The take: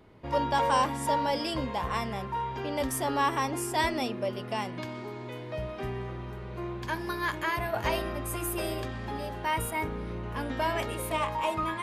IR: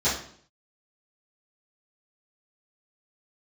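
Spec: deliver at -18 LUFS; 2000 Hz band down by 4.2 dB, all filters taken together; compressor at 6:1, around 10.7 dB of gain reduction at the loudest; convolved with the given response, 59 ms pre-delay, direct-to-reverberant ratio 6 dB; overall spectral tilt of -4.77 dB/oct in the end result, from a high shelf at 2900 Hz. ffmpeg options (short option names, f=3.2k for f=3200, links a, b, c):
-filter_complex "[0:a]equalizer=f=2k:t=o:g=-6.5,highshelf=f=2.9k:g=3.5,acompressor=threshold=-34dB:ratio=6,asplit=2[a][b];[1:a]atrim=start_sample=2205,adelay=59[c];[b][c]afir=irnorm=-1:irlink=0,volume=-19.5dB[d];[a][d]amix=inputs=2:normalize=0,volume=18.5dB"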